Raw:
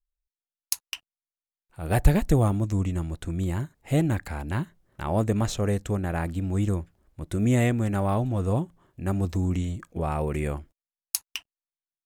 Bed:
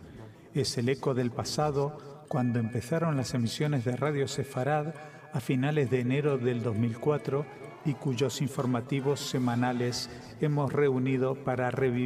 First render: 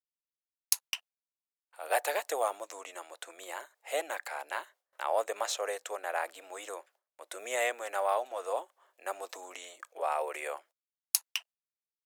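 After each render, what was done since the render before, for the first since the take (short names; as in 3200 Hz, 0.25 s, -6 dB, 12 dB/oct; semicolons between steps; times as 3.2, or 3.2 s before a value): steep high-pass 520 Hz 36 dB/oct; gate with hold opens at -59 dBFS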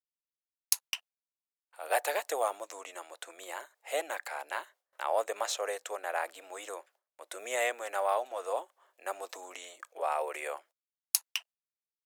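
nothing audible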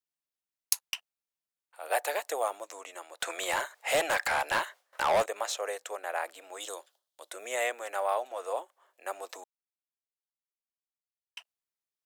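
3.2–5.26 overdrive pedal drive 22 dB, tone 6300 Hz, clips at -17.5 dBFS; 6.6–7.3 resonant high shelf 2800 Hz +6 dB, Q 3; 9.44–11.37 mute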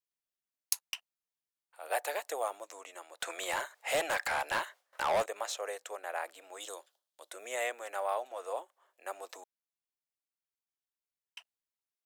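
gain -4 dB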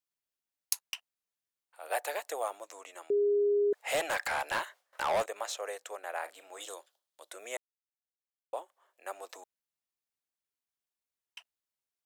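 3.1–3.73 bleep 409 Hz -23.5 dBFS; 6.19–6.74 doubler 37 ms -12.5 dB; 7.57–8.53 mute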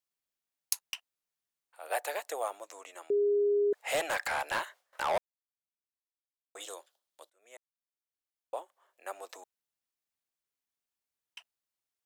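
5.18–6.55 mute; 7.3–8.55 fade in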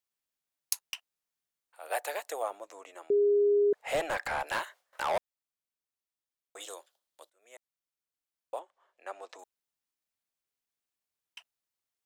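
2.42–4.47 tilt -2 dB/oct; 8.59–9.39 air absorption 83 m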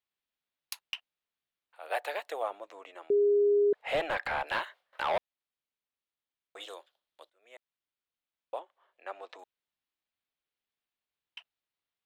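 resonant high shelf 4900 Hz -10.5 dB, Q 1.5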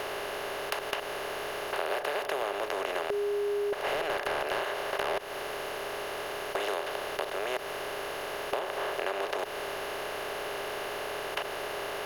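per-bin compression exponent 0.2; compressor, threshold -28 dBFS, peak gain reduction 8.5 dB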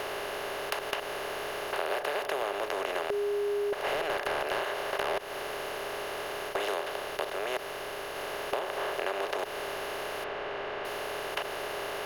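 6.49–8.16 three-band expander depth 40%; 10.24–10.85 LPF 3000 Hz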